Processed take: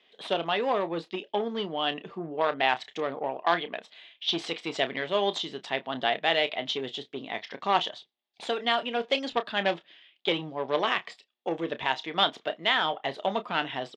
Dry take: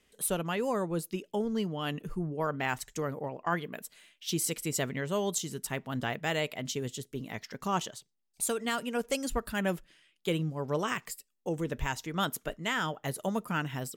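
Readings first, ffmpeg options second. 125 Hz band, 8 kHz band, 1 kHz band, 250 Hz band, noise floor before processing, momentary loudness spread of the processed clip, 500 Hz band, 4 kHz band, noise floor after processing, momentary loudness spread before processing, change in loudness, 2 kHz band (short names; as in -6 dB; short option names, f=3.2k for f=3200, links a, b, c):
-9.0 dB, -16.0 dB, +7.0 dB, -2.0 dB, -74 dBFS, 10 LU, +4.5 dB, +10.0 dB, -69 dBFS, 7 LU, +4.5 dB, +5.5 dB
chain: -filter_complex "[0:a]aeval=exprs='0.15*(cos(1*acos(clip(val(0)/0.15,-1,1)))-cos(1*PI/2))+0.0237*(cos(6*acos(clip(val(0)/0.15,-1,1)))-cos(6*PI/2))+0.0188*(cos(8*acos(clip(val(0)/0.15,-1,1)))-cos(8*PI/2))':c=same,highpass=390,equalizer=f=500:t=q:w=4:g=-3,equalizer=f=720:t=q:w=4:g=5,equalizer=f=1.4k:t=q:w=4:g=-5,equalizer=f=3.5k:t=q:w=4:g=8,lowpass=f=3.9k:w=0.5412,lowpass=f=3.9k:w=1.3066,asplit=2[a][b];[b]adelay=30,volume=-12dB[c];[a][c]amix=inputs=2:normalize=0,volume=6.5dB"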